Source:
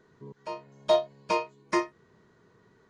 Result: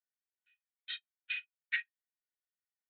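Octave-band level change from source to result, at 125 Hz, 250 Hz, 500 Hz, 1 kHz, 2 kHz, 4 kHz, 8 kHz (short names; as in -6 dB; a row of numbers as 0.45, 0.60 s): under -35 dB, under -40 dB, under -40 dB, -36.5 dB, +0.5 dB, -5.5 dB, under -30 dB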